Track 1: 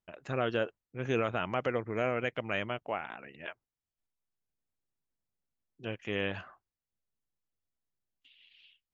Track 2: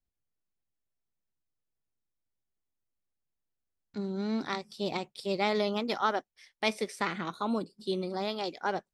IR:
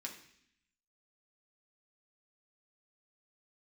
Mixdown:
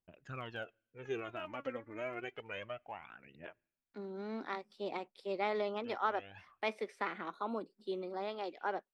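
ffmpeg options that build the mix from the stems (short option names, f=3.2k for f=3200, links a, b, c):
-filter_complex "[0:a]aphaser=in_gain=1:out_gain=1:delay=3.8:decay=0.7:speed=0.29:type=triangular,volume=-13dB,asplit=2[a][b];[b]volume=-22dB[c];[1:a]acrossover=split=240 2900:gain=0.0708 1 0.158[d][e][f];[d][e][f]amix=inputs=3:normalize=0,volume=-5dB,asplit=2[g][h];[h]apad=whole_len=394045[i];[a][i]sidechaincompress=threshold=-42dB:ratio=4:attack=39:release=468[j];[2:a]atrim=start_sample=2205[k];[c][k]afir=irnorm=-1:irlink=0[l];[j][g][l]amix=inputs=3:normalize=0"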